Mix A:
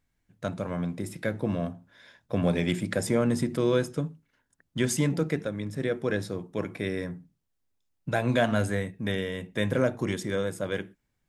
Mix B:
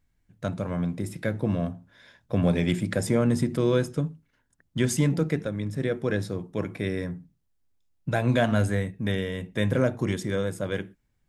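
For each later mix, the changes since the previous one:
master: add low-shelf EQ 150 Hz +7.5 dB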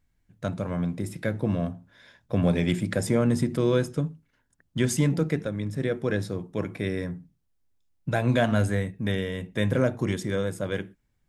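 nothing changed

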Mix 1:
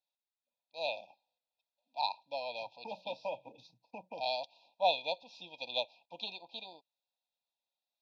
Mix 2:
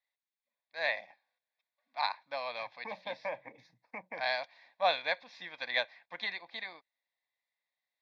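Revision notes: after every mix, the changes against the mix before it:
second voice: add parametric band 3,700 Hz −8 dB 1.2 octaves
master: remove linear-phase brick-wall band-stop 1,000–2,400 Hz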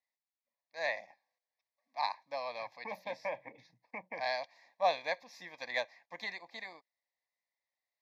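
first voice: remove low-pass with resonance 3,400 Hz, resonance Q 2.9
master: add Butterworth band-reject 1,400 Hz, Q 3.1

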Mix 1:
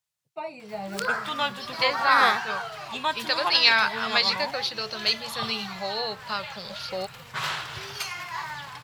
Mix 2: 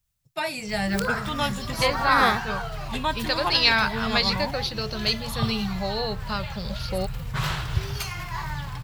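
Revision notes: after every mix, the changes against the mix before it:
first voice: remove moving average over 26 samples
master: remove meter weighting curve A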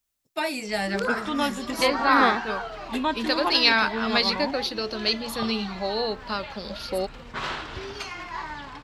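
background: add high-frequency loss of the air 100 metres
master: add low shelf with overshoot 190 Hz −12 dB, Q 3

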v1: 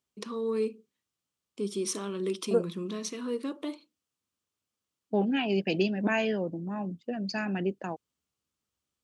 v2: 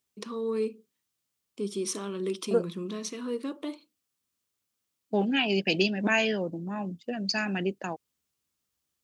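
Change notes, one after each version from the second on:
second voice: add high-shelf EQ 2,100 Hz +11 dB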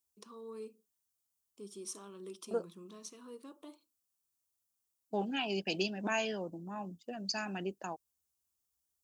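first voice −7.0 dB
master: add graphic EQ with 10 bands 125 Hz −12 dB, 250 Hz −7 dB, 500 Hz −7 dB, 2,000 Hz −12 dB, 4,000 Hz −6 dB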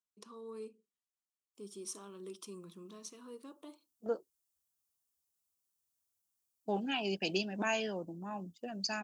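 second voice: entry +1.55 s

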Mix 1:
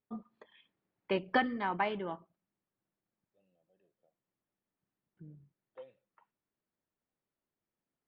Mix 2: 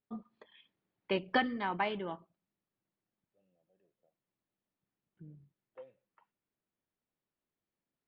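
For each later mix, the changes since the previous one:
first voice: remove low-pass filter 1,900 Hz 12 dB per octave
master: add high-frequency loss of the air 340 metres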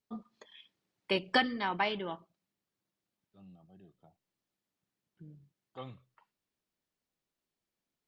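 second voice: remove formant filter e
master: remove high-frequency loss of the air 340 metres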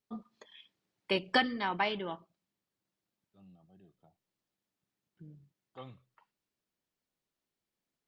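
second voice −3.0 dB

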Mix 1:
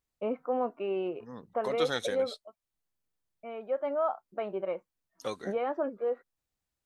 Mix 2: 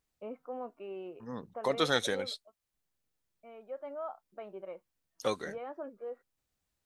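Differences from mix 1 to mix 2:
first voice −10.5 dB
second voice +4.0 dB

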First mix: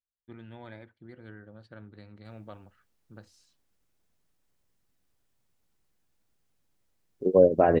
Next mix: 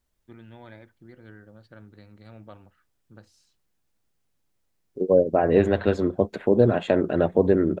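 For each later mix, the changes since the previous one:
second voice: entry −2.25 s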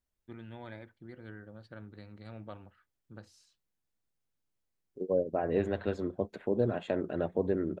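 second voice −11.0 dB

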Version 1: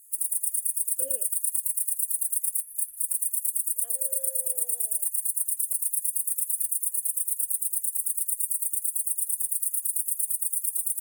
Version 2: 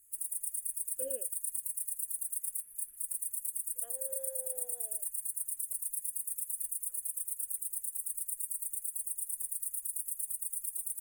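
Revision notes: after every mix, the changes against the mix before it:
master: add high-shelf EQ 3,800 Hz −10.5 dB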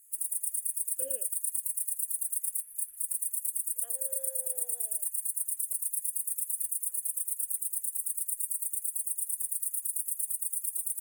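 master: add tilt shelving filter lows −4.5 dB, about 830 Hz

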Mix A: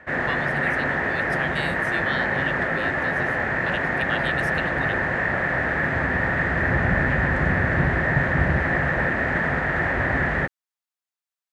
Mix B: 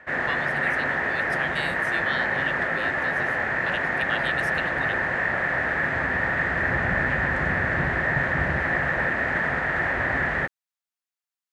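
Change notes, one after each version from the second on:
master: add low-shelf EQ 470 Hz −7 dB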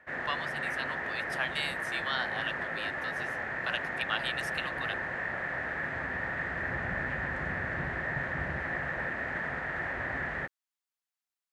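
background −10.0 dB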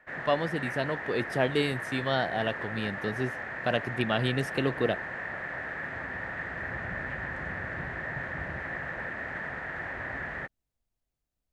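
speech: remove high-pass filter 1,000 Hz 24 dB per octave
background: send −9.0 dB

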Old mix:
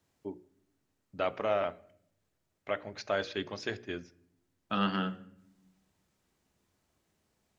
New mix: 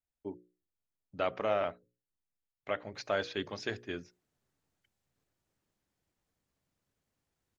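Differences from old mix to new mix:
second voice: entry +2.95 s
reverb: off

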